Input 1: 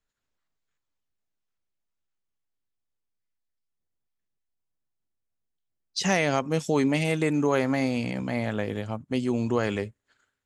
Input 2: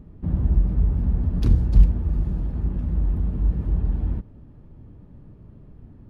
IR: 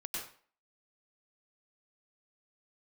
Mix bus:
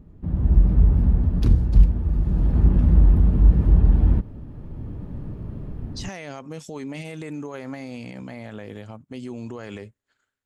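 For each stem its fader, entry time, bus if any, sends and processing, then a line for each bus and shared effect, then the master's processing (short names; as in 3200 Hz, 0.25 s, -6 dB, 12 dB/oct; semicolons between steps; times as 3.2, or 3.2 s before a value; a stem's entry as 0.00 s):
-4.5 dB, 0.00 s, no send, limiter -21 dBFS, peak gain reduction 10 dB
-3.0 dB, 0.00 s, no send, AGC gain up to 15.5 dB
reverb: off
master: dry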